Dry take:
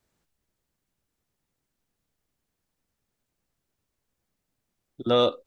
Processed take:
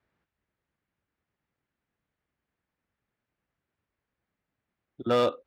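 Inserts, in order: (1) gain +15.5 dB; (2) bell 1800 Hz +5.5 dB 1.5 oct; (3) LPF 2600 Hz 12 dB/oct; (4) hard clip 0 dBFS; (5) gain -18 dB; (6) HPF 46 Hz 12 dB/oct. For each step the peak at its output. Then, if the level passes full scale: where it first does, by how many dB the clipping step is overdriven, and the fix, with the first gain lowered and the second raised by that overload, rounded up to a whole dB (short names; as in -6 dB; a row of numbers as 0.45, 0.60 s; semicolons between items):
+6.5, +8.0, +6.0, 0.0, -18.0, -16.5 dBFS; step 1, 6.0 dB; step 1 +9.5 dB, step 5 -12 dB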